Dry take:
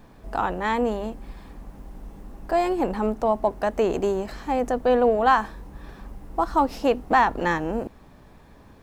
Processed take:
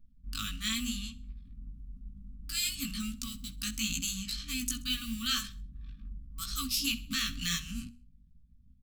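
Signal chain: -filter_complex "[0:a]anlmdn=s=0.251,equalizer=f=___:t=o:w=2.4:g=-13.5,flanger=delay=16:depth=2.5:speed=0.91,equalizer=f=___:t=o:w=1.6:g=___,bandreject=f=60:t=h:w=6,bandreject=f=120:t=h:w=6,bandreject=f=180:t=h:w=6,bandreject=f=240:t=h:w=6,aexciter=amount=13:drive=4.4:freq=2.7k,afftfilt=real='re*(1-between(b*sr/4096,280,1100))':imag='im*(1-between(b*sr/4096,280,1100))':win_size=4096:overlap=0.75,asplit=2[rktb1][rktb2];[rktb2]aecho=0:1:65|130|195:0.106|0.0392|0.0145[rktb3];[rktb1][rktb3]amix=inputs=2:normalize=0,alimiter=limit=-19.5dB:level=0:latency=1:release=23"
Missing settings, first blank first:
800, 5.9k, -6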